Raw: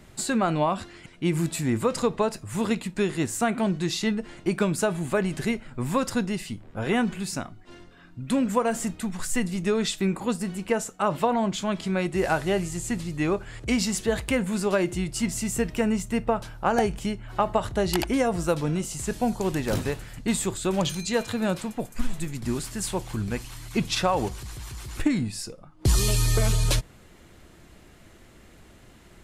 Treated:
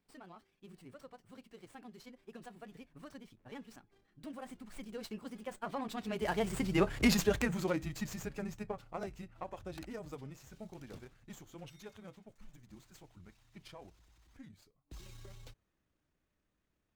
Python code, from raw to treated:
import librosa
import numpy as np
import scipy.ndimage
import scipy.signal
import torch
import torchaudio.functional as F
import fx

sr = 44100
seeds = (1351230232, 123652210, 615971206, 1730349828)

y = fx.doppler_pass(x, sr, speed_mps=41, closest_m=20.0, pass_at_s=11.96)
y = fx.stretch_grains(y, sr, factor=0.58, grain_ms=62.0)
y = fx.running_max(y, sr, window=3)